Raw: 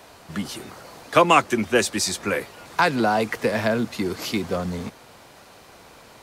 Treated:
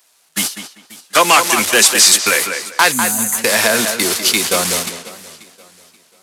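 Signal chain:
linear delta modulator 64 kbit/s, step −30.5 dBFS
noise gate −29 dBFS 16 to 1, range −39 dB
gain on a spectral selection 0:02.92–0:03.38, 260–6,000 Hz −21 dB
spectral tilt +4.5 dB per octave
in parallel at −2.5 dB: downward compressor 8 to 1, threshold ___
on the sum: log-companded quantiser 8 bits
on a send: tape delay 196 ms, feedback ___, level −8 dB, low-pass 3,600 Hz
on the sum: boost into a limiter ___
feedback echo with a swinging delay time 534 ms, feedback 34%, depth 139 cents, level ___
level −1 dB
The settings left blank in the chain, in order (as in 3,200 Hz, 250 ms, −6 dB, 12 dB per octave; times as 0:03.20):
−26 dBFS, 25%, +8.5 dB, −19.5 dB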